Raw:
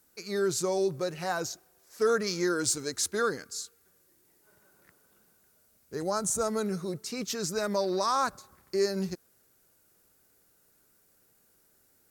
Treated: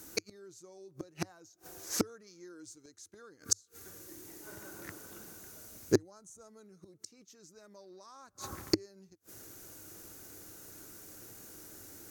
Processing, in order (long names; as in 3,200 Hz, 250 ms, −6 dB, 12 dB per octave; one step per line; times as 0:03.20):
gate with flip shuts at −28 dBFS, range −41 dB
thirty-one-band graphic EQ 100 Hz +9 dB, 315 Hz +10 dB, 6,300 Hz +7 dB
level +14 dB